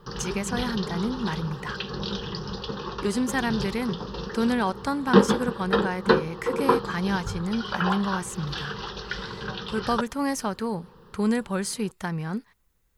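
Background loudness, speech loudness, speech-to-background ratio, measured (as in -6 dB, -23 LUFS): -29.0 LUFS, -29.0 LUFS, 0.0 dB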